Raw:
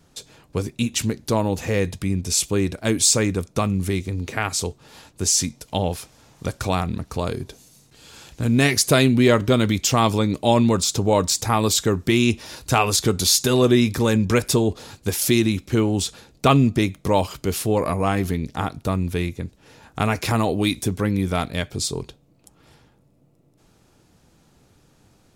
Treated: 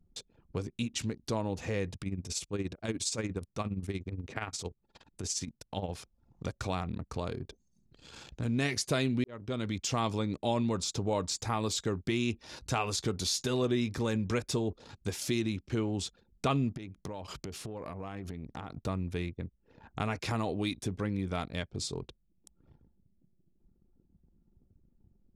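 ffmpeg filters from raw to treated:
ffmpeg -i in.wav -filter_complex "[0:a]asettb=1/sr,asplit=3[link_01][link_02][link_03];[link_01]atrim=end=1.964[link_04];[link_02]atrim=start=1.96:end=5.92,asetpts=PTS-STARTPTS,afade=type=in:duration=0.004:curve=qsin,afade=type=out:start_time=3.956:duration=0.004:curve=qsin,tremolo=f=17:d=0.66[link_05];[link_03]atrim=start=5.916[link_06];[link_04][link_05]acrossfade=duration=0.004:curve1=hsin:curve2=qsin[link_07];[link_07][link_06]acrossfade=duration=0.004:curve1=qsin:curve2=hsin,asettb=1/sr,asplit=3[link_08][link_09][link_10];[link_08]atrim=end=16.774[link_11];[link_09]atrim=start=16.77:end=18.69,asetpts=PTS-STARTPTS,afade=type=in:duration=0.004:curve=qsin,afade=type=out:start_time=1.916:duration=0.004:curve=qsin,acompressor=threshold=-28dB:ratio=16:attack=3.2:release=140:knee=1:detection=peak[link_12];[link_10]atrim=start=18.686[link_13];[link_11][link_12]acrossfade=duration=0.004:curve1=hsin:curve2=qsin[link_14];[link_14][link_13]acrossfade=duration=0.004:curve1=qsin:curve2=hsin,asplit=2[link_15][link_16];[link_15]atrim=end=9.24,asetpts=PTS-STARTPTS,afade=type=out:start_time=9.236:duration=0.004:curve=hsin[link_17];[link_16]atrim=start=9.24,asetpts=PTS-STARTPTS,afade=type=in:duration=0.66[link_18];[link_17][link_18]concat=n=2:v=0:a=1,acompressor=threshold=-51dB:ratio=1.5,anlmdn=0.0158,lowpass=7500" out.wav

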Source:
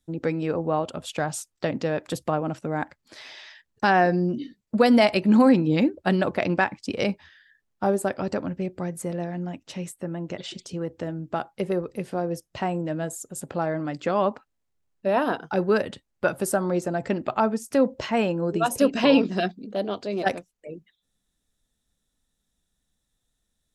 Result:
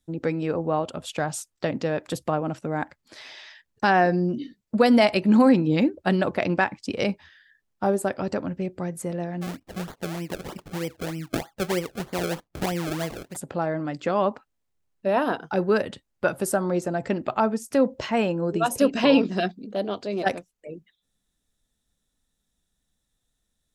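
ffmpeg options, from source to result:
ffmpeg -i in.wav -filter_complex "[0:a]asplit=3[link_01][link_02][link_03];[link_01]afade=type=out:start_time=9.41:duration=0.02[link_04];[link_02]acrusher=samples=32:mix=1:aa=0.000001:lfo=1:lforange=32:lforate=3.2,afade=type=in:start_time=9.41:duration=0.02,afade=type=out:start_time=13.35:duration=0.02[link_05];[link_03]afade=type=in:start_time=13.35:duration=0.02[link_06];[link_04][link_05][link_06]amix=inputs=3:normalize=0" out.wav

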